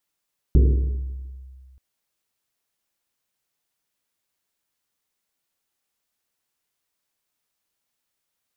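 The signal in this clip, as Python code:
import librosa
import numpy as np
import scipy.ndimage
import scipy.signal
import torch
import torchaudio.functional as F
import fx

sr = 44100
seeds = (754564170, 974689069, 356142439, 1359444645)

y = fx.risset_drum(sr, seeds[0], length_s=1.23, hz=65.0, decay_s=2.0, noise_hz=310.0, noise_width_hz=240.0, noise_pct=15)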